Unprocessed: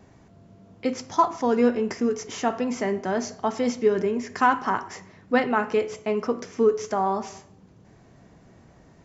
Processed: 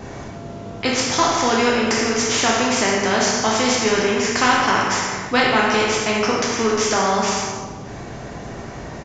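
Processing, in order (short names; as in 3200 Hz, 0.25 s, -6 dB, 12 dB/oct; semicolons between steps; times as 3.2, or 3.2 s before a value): reverb RT60 1.0 s, pre-delay 5 ms, DRR -3 dB; downsampling 16000 Hz; spectral compressor 2:1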